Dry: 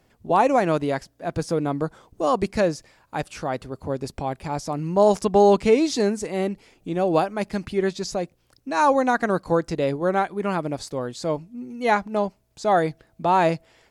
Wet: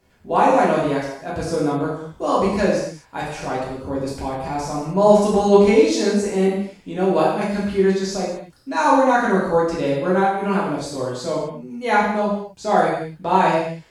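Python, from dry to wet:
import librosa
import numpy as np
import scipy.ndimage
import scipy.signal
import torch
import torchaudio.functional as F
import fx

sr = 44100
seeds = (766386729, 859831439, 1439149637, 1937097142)

y = fx.dmg_noise_colour(x, sr, seeds[0], colour='brown', level_db=-54.0, at=(3.26, 5.16), fade=0.02)
y = fx.rev_gated(y, sr, seeds[1], gate_ms=280, shape='falling', drr_db=-7.0)
y = y * 10.0 ** (-4.0 / 20.0)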